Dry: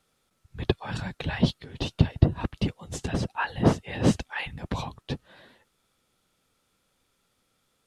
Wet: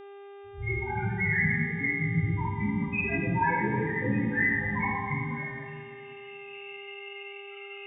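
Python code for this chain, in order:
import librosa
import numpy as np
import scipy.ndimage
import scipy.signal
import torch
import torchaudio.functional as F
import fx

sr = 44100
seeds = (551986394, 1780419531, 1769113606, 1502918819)

y = fx.freq_compress(x, sr, knee_hz=1800.0, ratio=4.0)
y = fx.recorder_agc(y, sr, target_db=-11.0, rise_db_per_s=15.0, max_gain_db=30)
y = fx.low_shelf(y, sr, hz=300.0, db=-10.0)
y = fx.hum_notches(y, sr, base_hz=60, count=4)
y = np.clip(y, -10.0 ** (-22.5 / 20.0), 10.0 ** (-22.5 / 20.0))
y = fx.spec_topn(y, sr, count=2)
y = fx.doubler(y, sr, ms=18.0, db=-5)
y = fx.rev_plate(y, sr, seeds[0], rt60_s=2.1, hf_ratio=0.6, predelay_ms=0, drr_db=-9.5)
y = fx.dmg_buzz(y, sr, base_hz=400.0, harmonics=9, level_db=-46.0, tilt_db=-9, odd_only=False)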